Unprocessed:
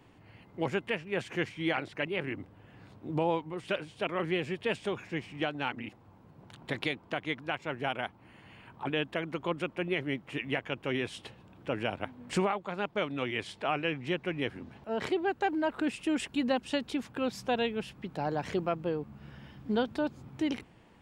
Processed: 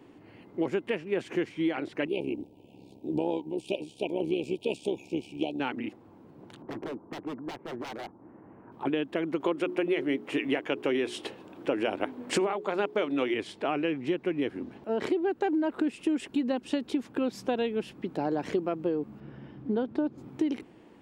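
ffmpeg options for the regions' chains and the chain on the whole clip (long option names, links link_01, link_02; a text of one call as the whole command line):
ffmpeg -i in.wav -filter_complex "[0:a]asettb=1/sr,asplit=3[link_01][link_02][link_03];[link_01]atrim=end=2.074[link_04];[link_02]atrim=start=2.07:end=5.6,asetpts=PTS-STARTPTS,afade=type=in:duration=0.004:curve=qsin,afade=type=out:start_time=3.526:duration=0.004:curve=qsin,highshelf=frequency=4100:gain=8,tremolo=f=68:d=0.71,asuperstop=centerf=1500:order=20:qfactor=1.1[link_05];[link_03]atrim=start=5.596[link_06];[link_04][link_05]acrossfade=duration=0.004:curve1=hsin:curve2=qsin[link_07];[link_07][link_06]acrossfade=duration=0.004:curve1=qsin:curve2=hsin,asettb=1/sr,asplit=3[link_08][link_09][link_10];[link_08]atrim=end=6.624[link_11];[link_09]atrim=start=6.62:end=8.72,asetpts=PTS-STARTPTS,afade=type=in:duration=0.004:curve=qsin,afade=type=out:start_time=2.096:duration=0.004:curve=qsin,lowpass=frequency=1300:width=0.5412,lowpass=frequency=1300:width=1.3066,aeval=exprs='0.0158*(abs(mod(val(0)/0.0158+3,4)-2)-1)':channel_layout=same[link_12];[link_10]atrim=start=8.716[link_13];[link_11][link_12]acrossfade=duration=0.004:curve1=hsin:curve2=qsin[link_14];[link_14][link_13]acrossfade=duration=0.004:curve1=qsin:curve2=hsin,asettb=1/sr,asplit=3[link_15][link_16][link_17];[link_15]atrim=end=9.404[link_18];[link_16]atrim=start=9.4:end=13.34,asetpts=PTS-STARTPTS,afade=type=in:duration=0.004:curve=qsin,afade=type=out:start_time=3.936:duration=0.004:curve=qsin,bass=frequency=250:gain=-8,treble=frequency=4000:gain=1,bandreject=frequency=60:width_type=h:width=6,bandreject=frequency=120:width_type=h:width=6,bandreject=frequency=180:width_type=h:width=6,bandreject=frequency=240:width_type=h:width=6,bandreject=frequency=300:width_type=h:width=6,bandreject=frequency=360:width_type=h:width=6,bandreject=frequency=420:width_type=h:width=6,acontrast=55[link_19];[link_17]atrim=start=13.336[link_20];[link_18][link_19]acrossfade=duration=0.004:curve1=hsin:curve2=qsin[link_21];[link_21][link_20]acrossfade=duration=0.004:curve1=qsin:curve2=hsin,asettb=1/sr,asplit=3[link_22][link_23][link_24];[link_22]atrim=end=19.204[link_25];[link_23]atrim=start=19.2:end=20.18,asetpts=PTS-STARTPTS,afade=type=in:duration=0.004:curve=qsin,afade=type=out:start_time=0.976:duration=0.004:curve=qsin,lowpass=frequency=1700:poles=1,equalizer=frequency=130:width_type=o:width=0.27:gain=6[link_26];[link_24]atrim=start=20.176[link_27];[link_25][link_26]acrossfade=duration=0.004:curve1=hsin:curve2=qsin[link_28];[link_28][link_27]acrossfade=duration=0.004:curve1=qsin:curve2=hsin,equalizer=frequency=320:width_type=o:width=1.4:gain=12.5,acompressor=threshold=-23dB:ratio=6,lowshelf=frequency=180:gain=-7" out.wav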